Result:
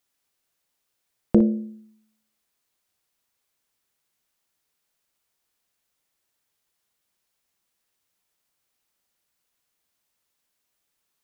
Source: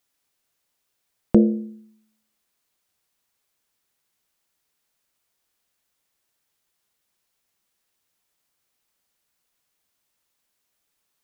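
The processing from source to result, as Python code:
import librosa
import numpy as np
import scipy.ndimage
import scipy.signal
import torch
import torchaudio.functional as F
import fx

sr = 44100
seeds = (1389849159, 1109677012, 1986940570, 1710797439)

y = fx.room_early_taps(x, sr, ms=(38, 59), db=(-18.0, -12.0))
y = y * librosa.db_to_amplitude(-2.0)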